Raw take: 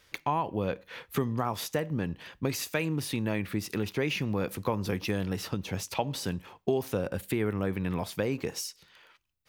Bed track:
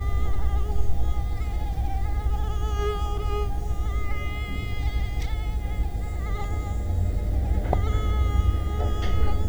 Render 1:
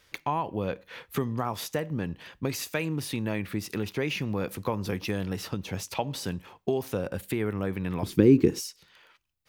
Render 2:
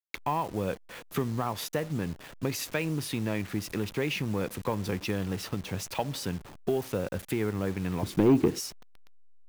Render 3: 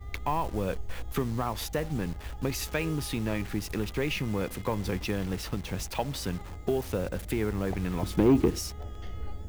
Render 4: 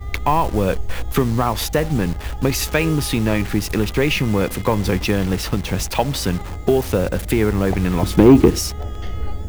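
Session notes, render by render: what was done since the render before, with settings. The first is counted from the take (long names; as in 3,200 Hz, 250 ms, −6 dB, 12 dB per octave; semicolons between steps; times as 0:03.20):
0:08.03–0:08.60: low shelf with overshoot 470 Hz +10.5 dB, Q 3
hold until the input has moved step −41 dBFS; soft clipping −14.5 dBFS, distortion −14 dB
mix in bed track −15 dB
level +12 dB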